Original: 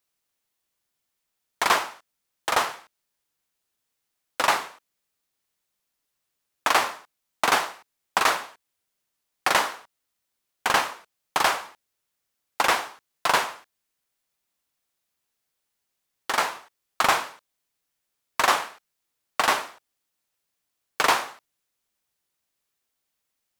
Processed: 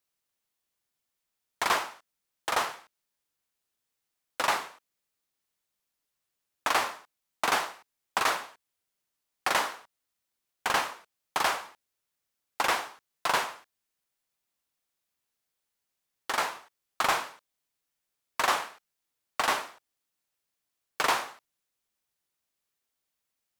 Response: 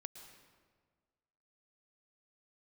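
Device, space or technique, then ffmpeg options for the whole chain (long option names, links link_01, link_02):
parallel distortion: -filter_complex "[0:a]asplit=2[link_01][link_02];[link_02]asoftclip=type=hard:threshold=-20.5dB,volume=-6dB[link_03];[link_01][link_03]amix=inputs=2:normalize=0,volume=-7.5dB"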